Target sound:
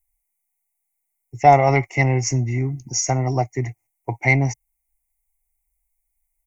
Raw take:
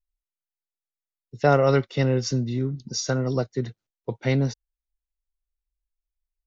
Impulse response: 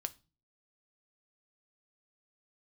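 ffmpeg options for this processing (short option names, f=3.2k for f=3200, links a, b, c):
-filter_complex "[0:a]firequalizer=gain_entry='entry(120,0);entry(190,-14);entry(320,-2);entry(500,-13);entry(750,10);entry(1500,-19);entry(2100,12);entry(3600,-29);entry(5900,2);entry(9400,14)':delay=0.05:min_phase=1,asplit=2[a][b];[b]asoftclip=type=tanh:threshold=-16.5dB,volume=-7dB[c];[a][c]amix=inputs=2:normalize=0,volume=4dB"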